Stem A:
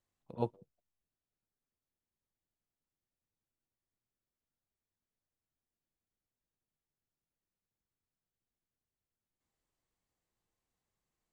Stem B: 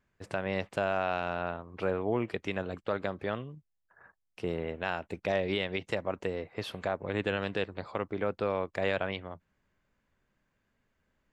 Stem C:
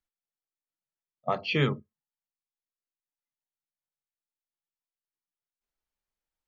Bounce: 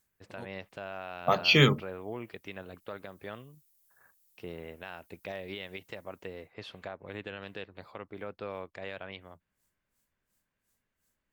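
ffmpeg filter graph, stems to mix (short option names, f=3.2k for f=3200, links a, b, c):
-filter_complex "[0:a]aeval=exprs='val(0)*pow(10,-25*(0.5-0.5*cos(2*PI*2.8*n/s))/20)':c=same,volume=0dB[a];[1:a]lowpass=3k,volume=-8.5dB[b];[2:a]aemphasis=mode=production:type=50kf,dynaudnorm=f=400:g=5:m=14.5dB,volume=-7.5dB[c];[a][b]amix=inputs=2:normalize=0,highshelf=f=3.6k:g=11,alimiter=level_in=3dB:limit=-24dB:level=0:latency=1:release=201,volume=-3dB,volume=0dB[d];[c][d]amix=inputs=2:normalize=0,aemphasis=mode=production:type=cd"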